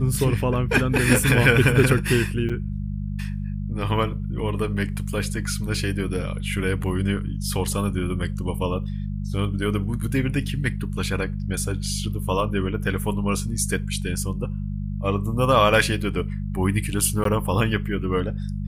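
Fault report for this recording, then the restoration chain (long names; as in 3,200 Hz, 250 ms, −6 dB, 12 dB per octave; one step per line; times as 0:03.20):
mains hum 50 Hz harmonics 4 −28 dBFS
0:02.49–0:02.50: drop-out 6.1 ms
0:17.24–0:17.25: drop-out 13 ms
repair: hum removal 50 Hz, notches 4
repair the gap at 0:02.49, 6.1 ms
repair the gap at 0:17.24, 13 ms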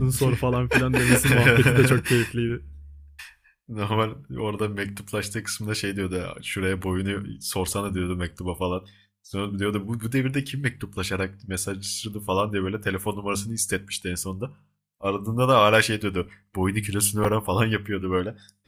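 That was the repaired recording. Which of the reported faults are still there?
none of them is left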